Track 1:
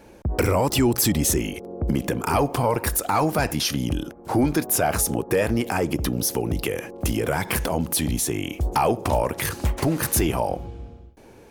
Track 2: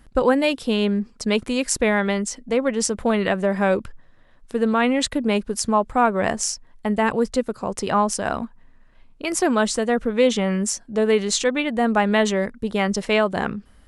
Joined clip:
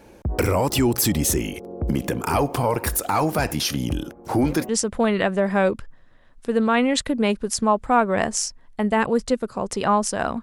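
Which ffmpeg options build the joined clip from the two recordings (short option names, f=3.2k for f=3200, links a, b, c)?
-filter_complex "[1:a]asplit=2[a][b];[0:a]apad=whole_dur=10.42,atrim=end=10.42,atrim=end=4.692[c];[b]atrim=start=2.748:end=8.48[d];[a]atrim=start=2.32:end=2.75,asetpts=PTS-STARTPTS,volume=-17.5dB,afade=t=in:d=0.004:c=hsin,afade=t=out:st=0.426:d=0.004:c=hsin,adelay=4260[e];[c][d]acrossfade=d=0.004:c1=hsin:c2=hsin[f];[f][e]amix=inputs=2:normalize=0"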